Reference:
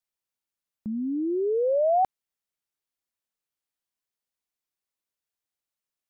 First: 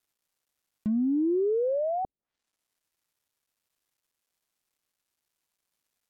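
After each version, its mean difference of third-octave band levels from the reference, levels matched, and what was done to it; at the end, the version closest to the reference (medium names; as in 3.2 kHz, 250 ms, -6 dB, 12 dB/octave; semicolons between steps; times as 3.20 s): 1.5 dB: companding laws mixed up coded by mu; low-pass that closes with the level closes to 370 Hz, closed at -25.5 dBFS; trim +3 dB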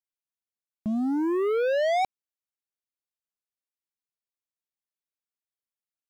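7.5 dB: waveshaping leveller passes 3; trim -4.5 dB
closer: first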